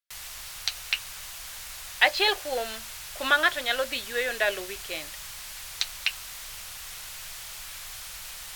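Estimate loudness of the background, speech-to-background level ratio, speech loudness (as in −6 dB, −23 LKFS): −37.5 LKFS, 10.5 dB, −27.0 LKFS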